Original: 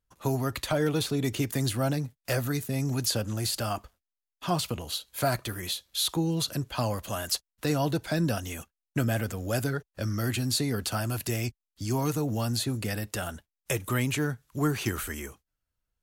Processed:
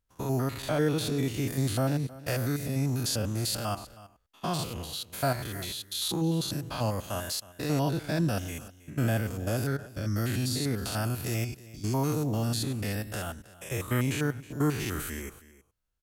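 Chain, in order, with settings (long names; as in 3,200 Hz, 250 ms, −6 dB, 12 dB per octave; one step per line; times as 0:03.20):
spectrum averaged block by block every 100 ms
on a send: single-tap delay 318 ms −18.5 dB
on the sum: level +1 dB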